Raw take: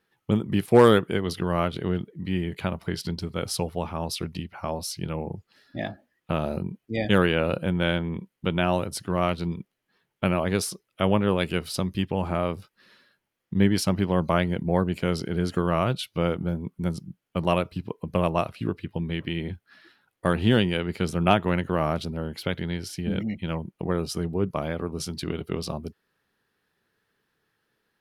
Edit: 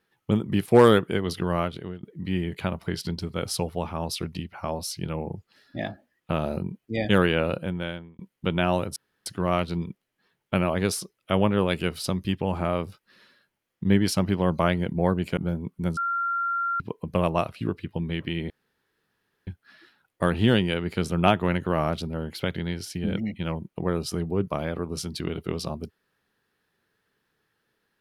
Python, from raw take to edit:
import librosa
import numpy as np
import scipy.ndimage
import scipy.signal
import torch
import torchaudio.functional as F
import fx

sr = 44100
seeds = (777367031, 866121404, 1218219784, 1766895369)

y = fx.edit(x, sr, fx.fade_out_to(start_s=1.52, length_s=0.51, floor_db=-19.5),
    fx.fade_out_span(start_s=7.39, length_s=0.8),
    fx.insert_room_tone(at_s=8.96, length_s=0.3),
    fx.cut(start_s=15.07, length_s=1.3),
    fx.bleep(start_s=16.97, length_s=0.83, hz=1380.0, db=-23.5),
    fx.insert_room_tone(at_s=19.5, length_s=0.97), tone=tone)